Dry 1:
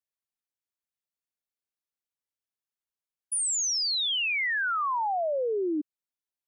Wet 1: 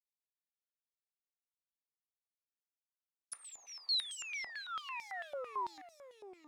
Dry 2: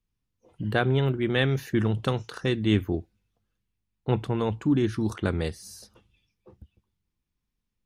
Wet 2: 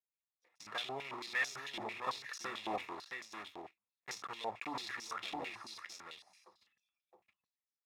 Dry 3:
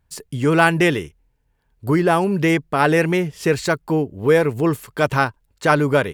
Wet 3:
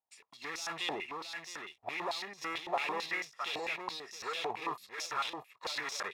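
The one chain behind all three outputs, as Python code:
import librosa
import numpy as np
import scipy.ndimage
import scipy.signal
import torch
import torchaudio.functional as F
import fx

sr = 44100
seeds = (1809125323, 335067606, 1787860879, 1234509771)

y = fx.block_float(x, sr, bits=3)
y = fx.noise_reduce_blind(y, sr, reduce_db=11)
y = fx.transient(y, sr, attack_db=7, sustain_db=11)
y = np.clip(10.0 ** (16.5 / 20.0) * y, -1.0, 1.0) / 10.0 ** (16.5 / 20.0)
y = fx.notch_comb(y, sr, f0_hz=1500.0)
y = y + 10.0 ** (-5.0 / 20.0) * np.pad(y, (int(667 * sr / 1000.0), 0))[:len(y)]
y = fx.filter_held_bandpass(y, sr, hz=9.0, low_hz=780.0, high_hz=5700.0)
y = F.gain(torch.from_numpy(y), -2.5).numpy()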